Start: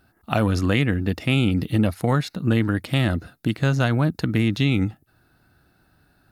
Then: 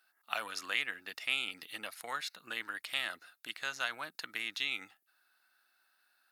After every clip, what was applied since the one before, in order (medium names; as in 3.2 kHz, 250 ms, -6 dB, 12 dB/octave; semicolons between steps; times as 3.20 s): high-pass 1.4 kHz 12 dB/octave; trim -5.5 dB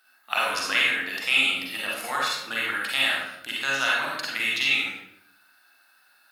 hum notches 60/120/180/240/300/360/420/480/540 Hz; reverberation RT60 0.75 s, pre-delay 39 ms, DRR -4.5 dB; trim +7.5 dB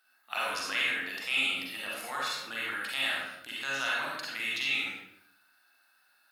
transient shaper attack -3 dB, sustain +3 dB; trim -7 dB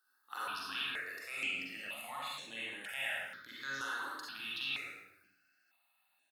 on a send: delay 110 ms -9.5 dB; on the sum: stepped phaser 2.1 Hz 650–4900 Hz; trim -5 dB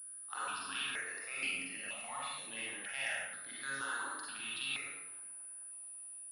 band-passed feedback delay 216 ms, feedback 81%, band-pass 700 Hz, level -18 dB; class-D stage that switches slowly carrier 9.8 kHz